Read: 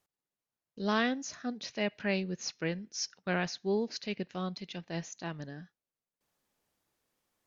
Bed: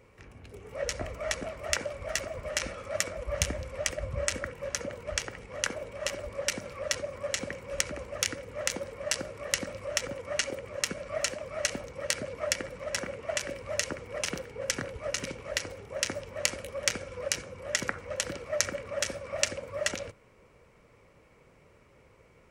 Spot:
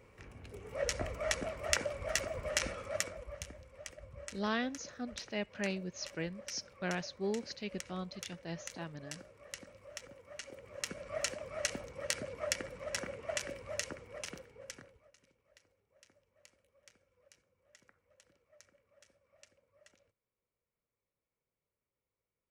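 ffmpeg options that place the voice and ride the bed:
ffmpeg -i stem1.wav -i stem2.wav -filter_complex "[0:a]adelay=3550,volume=-5dB[link_01];[1:a]volume=9.5dB,afade=type=out:start_time=2.72:duration=0.68:silence=0.177828,afade=type=in:start_time=10.42:duration=0.78:silence=0.266073,afade=type=out:start_time=13.38:duration=1.72:silence=0.0375837[link_02];[link_01][link_02]amix=inputs=2:normalize=0" out.wav

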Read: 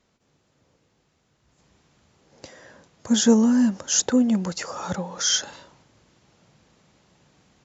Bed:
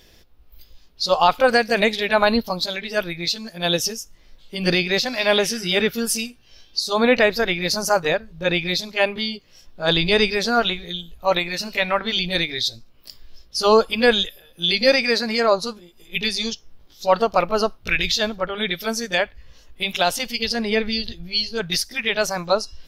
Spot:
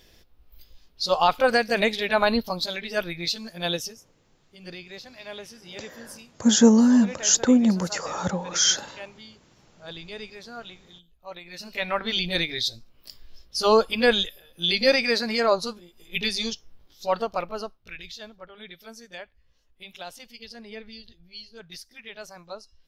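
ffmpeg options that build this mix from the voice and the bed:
ffmpeg -i stem1.wav -i stem2.wav -filter_complex "[0:a]adelay=3350,volume=1.5dB[link_01];[1:a]volume=13.5dB,afade=type=out:start_time=3.58:duration=0.43:silence=0.141254,afade=type=in:start_time=11.41:duration=0.7:silence=0.133352,afade=type=out:start_time=16.54:duration=1.34:silence=0.158489[link_02];[link_01][link_02]amix=inputs=2:normalize=0" out.wav

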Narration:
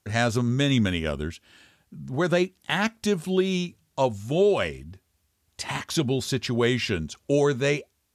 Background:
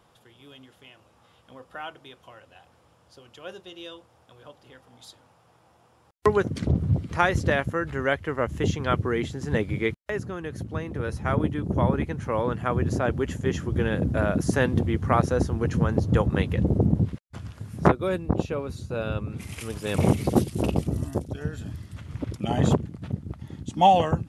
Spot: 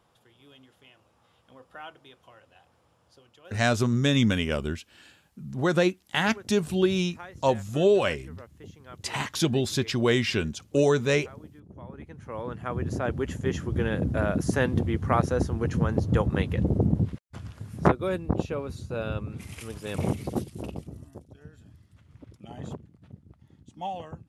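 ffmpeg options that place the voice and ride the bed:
ffmpeg -i stem1.wav -i stem2.wav -filter_complex "[0:a]adelay=3450,volume=0dB[link_01];[1:a]volume=14dB,afade=type=out:start_time=3.1:duration=0.62:silence=0.158489,afade=type=in:start_time=11.87:duration=1.48:silence=0.105925,afade=type=out:start_time=19.05:duration=2:silence=0.177828[link_02];[link_01][link_02]amix=inputs=2:normalize=0" out.wav

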